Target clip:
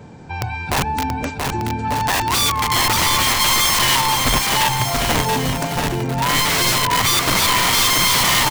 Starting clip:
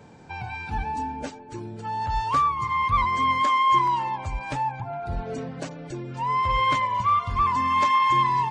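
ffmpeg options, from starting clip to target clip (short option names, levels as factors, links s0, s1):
-af "lowshelf=f=260:g=6.5,aeval=exprs='(mod(9.44*val(0)+1,2)-1)/9.44':c=same,aecho=1:1:680|1190|1572|1859|2075:0.631|0.398|0.251|0.158|0.1,volume=2"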